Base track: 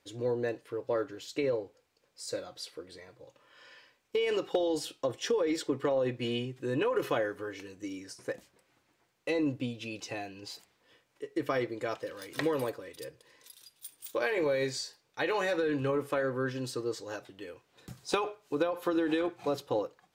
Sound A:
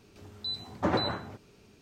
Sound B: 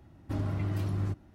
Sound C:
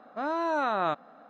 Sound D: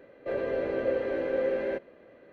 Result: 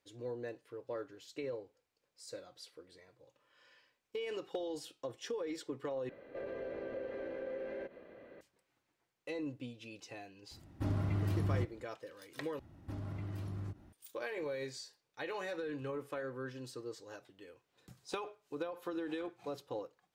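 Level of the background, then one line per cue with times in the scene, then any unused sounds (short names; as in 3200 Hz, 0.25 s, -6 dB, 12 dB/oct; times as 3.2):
base track -10.5 dB
6.09 replace with D -1 dB + compressor 3:1, threshold -42 dBFS
10.51 add B -2.5 dB
12.59 replace with B -2.5 dB + compressor 3:1, threshold -38 dBFS
not used: A, C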